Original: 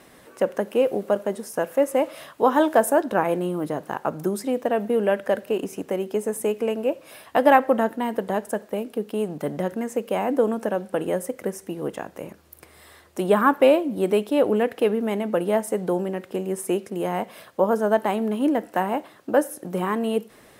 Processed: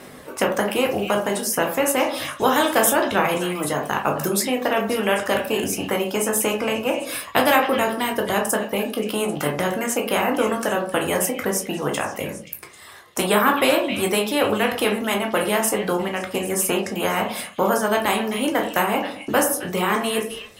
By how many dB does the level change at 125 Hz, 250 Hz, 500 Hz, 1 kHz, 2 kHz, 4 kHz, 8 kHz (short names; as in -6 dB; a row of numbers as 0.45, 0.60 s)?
+3.0, +1.0, 0.0, +3.0, +8.0, +13.0, +13.5 dB